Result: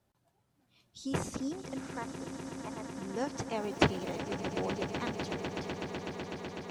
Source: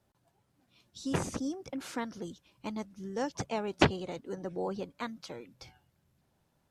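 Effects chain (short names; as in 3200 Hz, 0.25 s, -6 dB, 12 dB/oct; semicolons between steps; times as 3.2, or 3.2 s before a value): 1.8–2.94 Butterworth band-pass 1000 Hz, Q 0.67; 3.54–4.19 crackle 570/s -46 dBFS; swelling echo 0.125 s, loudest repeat 8, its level -13 dB; gain -2 dB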